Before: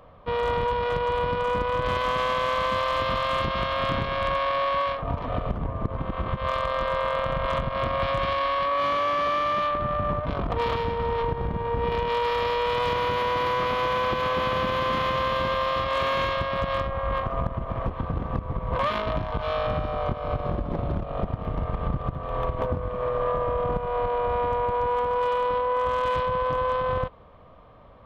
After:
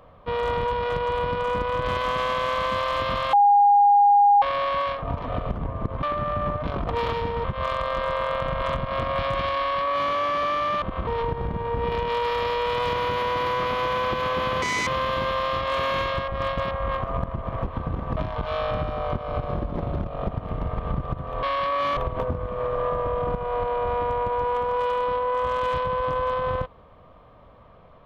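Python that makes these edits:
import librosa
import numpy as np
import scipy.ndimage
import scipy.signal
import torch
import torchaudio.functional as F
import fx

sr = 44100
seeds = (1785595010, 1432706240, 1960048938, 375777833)

y = fx.edit(x, sr, fx.bleep(start_s=3.33, length_s=1.09, hz=814.0, db=-12.5),
    fx.swap(start_s=6.03, length_s=0.25, other_s=9.66, other_length_s=1.41),
    fx.duplicate(start_s=8.42, length_s=0.54, to_s=22.39),
    fx.speed_span(start_s=14.62, length_s=0.48, speed=1.93),
    fx.reverse_span(start_s=16.51, length_s=0.43),
    fx.cut(start_s=18.4, length_s=0.73), tone=tone)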